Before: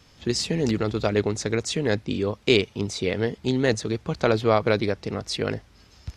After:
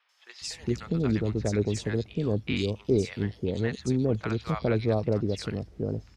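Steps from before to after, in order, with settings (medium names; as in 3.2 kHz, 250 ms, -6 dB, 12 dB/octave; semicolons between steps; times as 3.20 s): bass shelf 320 Hz +9.5 dB; three bands offset in time mids, highs, lows 90/410 ms, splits 870/3400 Hz; trim -8 dB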